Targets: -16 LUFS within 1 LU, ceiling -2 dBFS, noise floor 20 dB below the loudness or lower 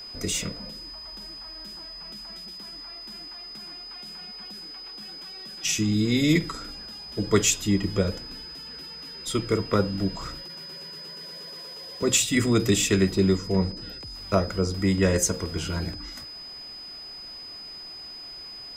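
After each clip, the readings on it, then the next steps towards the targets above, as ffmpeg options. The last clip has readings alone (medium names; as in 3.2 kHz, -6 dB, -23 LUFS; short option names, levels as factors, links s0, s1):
steady tone 5 kHz; tone level -38 dBFS; loudness -28.0 LUFS; peak level -7.5 dBFS; loudness target -16.0 LUFS
-> -af "bandreject=f=5000:w=30"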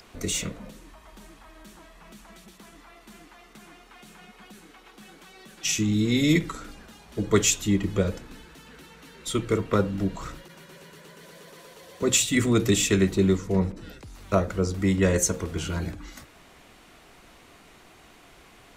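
steady tone not found; loudness -24.5 LUFS; peak level -7.5 dBFS; loudness target -16.0 LUFS
-> -af "volume=2.66,alimiter=limit=0.794:level=0:latency=1"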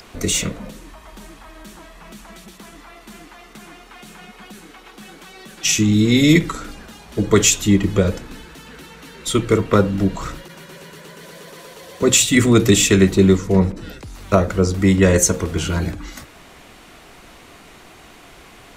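loudness -16.5 LUFS; peak level -2.0 dBFS; noise floor -45 dBFS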